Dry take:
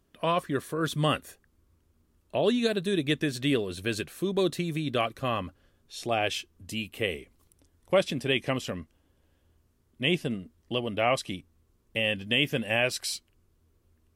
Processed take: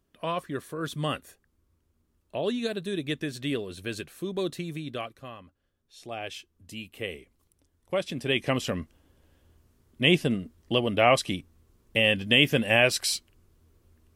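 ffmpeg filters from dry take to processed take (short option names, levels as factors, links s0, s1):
-af "volume=7.08,afade=t=out:st=4.7:d=0.68:silence=0.251189,afade=t=in:st=5.38:d=1.67:silence=0.281838,afade=t=in:st=8.02:d=0.78:silence=0.316228"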